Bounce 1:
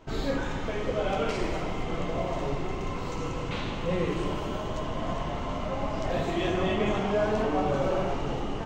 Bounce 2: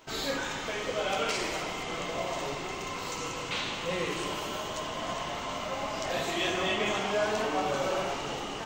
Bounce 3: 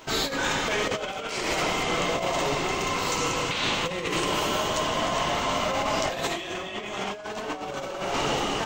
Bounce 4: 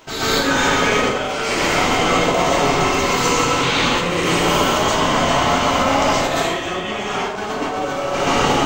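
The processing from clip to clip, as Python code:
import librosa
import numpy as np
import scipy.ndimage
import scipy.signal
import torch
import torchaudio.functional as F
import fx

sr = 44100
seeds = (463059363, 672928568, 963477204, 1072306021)

y1 = fx.tilt_eq(x, sr, slope=3.5)
y2 = fx.over_compress(y1, sr, threshold_db=-34.0, ratio=-0.5)
y2 = y2 * librosa.db_to_amplitude(7.0)
y3 = fx.rev_plate(y2, sr, seeds[0], rt60_s=0.83, hf_ratio=0.55, predelay_ms=110, drr_db=-9.5)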